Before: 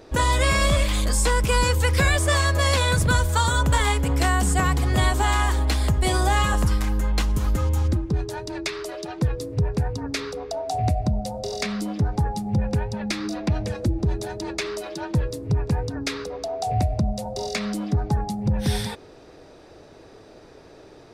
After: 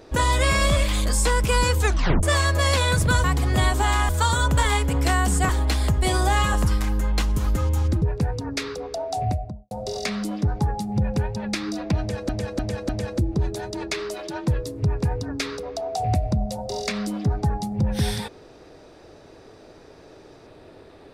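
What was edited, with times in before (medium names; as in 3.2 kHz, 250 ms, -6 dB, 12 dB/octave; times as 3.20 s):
1.80 s: tape stop 0.43 s
4.64–5.49 s: move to 3.24 s
8.02–9.59 s: delete
10.70–11.28 s: studio fade out
13.56–13.86 s: loop, 4 plays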